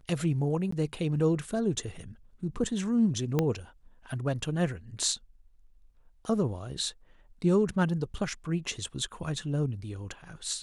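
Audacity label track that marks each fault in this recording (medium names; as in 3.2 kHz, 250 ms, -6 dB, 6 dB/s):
0.710000	0.720000	dropout 14 ms
3.390000	3.390000	pop -13 dBFS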